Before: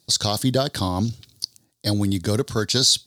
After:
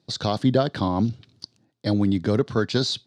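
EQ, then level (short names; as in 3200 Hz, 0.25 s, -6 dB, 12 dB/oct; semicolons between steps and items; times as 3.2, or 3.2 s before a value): BPF 130–2700 Hz; low shelf 370 Hz +3.5 dB; 0.0 dB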